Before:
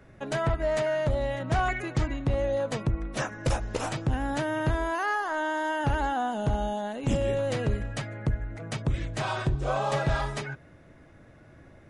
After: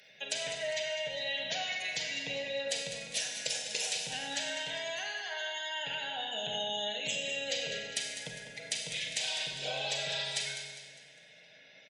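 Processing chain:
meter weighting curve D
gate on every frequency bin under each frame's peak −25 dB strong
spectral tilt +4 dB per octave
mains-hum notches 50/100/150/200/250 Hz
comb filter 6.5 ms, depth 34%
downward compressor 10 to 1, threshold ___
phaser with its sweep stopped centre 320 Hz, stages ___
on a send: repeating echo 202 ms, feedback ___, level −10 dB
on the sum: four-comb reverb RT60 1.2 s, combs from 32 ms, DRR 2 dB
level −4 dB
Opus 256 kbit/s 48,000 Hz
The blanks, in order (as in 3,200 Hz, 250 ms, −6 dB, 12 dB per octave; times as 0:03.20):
−27 dBFS, 6, 42%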